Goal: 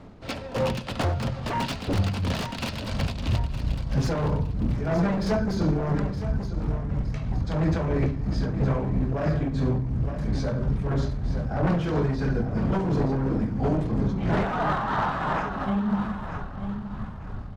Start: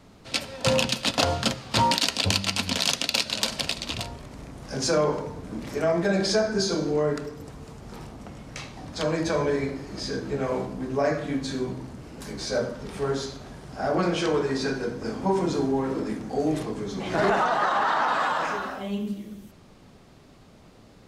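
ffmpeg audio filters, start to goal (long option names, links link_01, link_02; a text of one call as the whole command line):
ffmpeg -i in.wav -af "asubboost=boost=7:cutoff=140,aeval=exprs='0.106*(abs(mod(val(0)/0.106+3,4)-2)-1)':channel_layout=same,acompressor=threshold=-35dB:ratio=1.5,lowpass=frequency=1200:poles=1,aecho=1:1:1101|2202|3303|4404:0.335|0.111|0.0365|0.012,tremolo=f=2.5:d=0.43,atempo=1.2,volume=8dB" out.wav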